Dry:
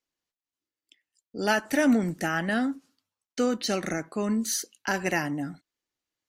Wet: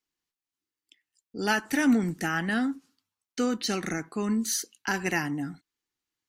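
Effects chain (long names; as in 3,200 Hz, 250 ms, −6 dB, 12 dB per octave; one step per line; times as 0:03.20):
parametric band 590 Hz −11.5 dB 0.36 octaves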